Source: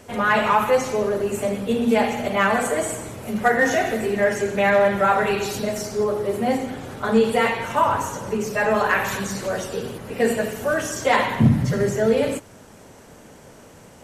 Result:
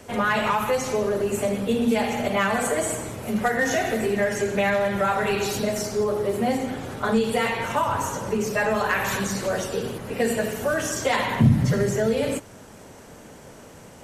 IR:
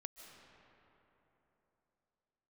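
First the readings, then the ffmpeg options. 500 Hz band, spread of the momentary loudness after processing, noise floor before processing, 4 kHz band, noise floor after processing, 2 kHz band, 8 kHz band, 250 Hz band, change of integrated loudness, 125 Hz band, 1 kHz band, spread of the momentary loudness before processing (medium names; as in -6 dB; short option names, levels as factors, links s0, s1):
-3.0 dB, 5 LU, -46 dBFS, 0.0 dB, -45 dBFS, -3.0 dB, +1.0 dB, -1.5 dB, -2.5 dB, 0.0 dB, -4.0 dB, 9 LU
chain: -filter_complex "[0:a]acrossover=split=170|3000[s0][s1][s2];[s1]acompressor=threshold=0.0891:ratio=6[s3];[s0][s3][s2]amix=inputs=3:normalize=0,volume=1.12"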